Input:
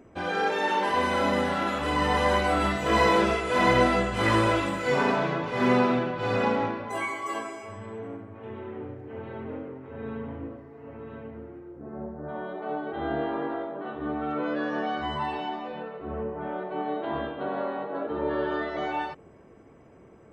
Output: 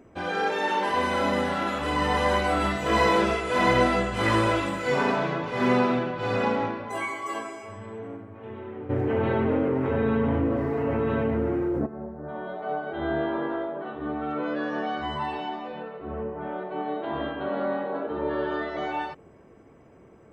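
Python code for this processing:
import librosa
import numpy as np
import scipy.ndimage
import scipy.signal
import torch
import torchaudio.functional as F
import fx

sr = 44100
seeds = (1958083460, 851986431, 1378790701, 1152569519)

y = fx.env_flatten(x, sr, amount_pct=70, at=(8.89, 11.85), fade=0.02)
y = fx.doubler(y, sr, ms=12.0, db=-4.0, at=(12.46, 13.84))
y = fx.reverb_throw(y, sr, start_s=17.13, length_s=0.78, rt60_s=0.9, drr_db=2.0)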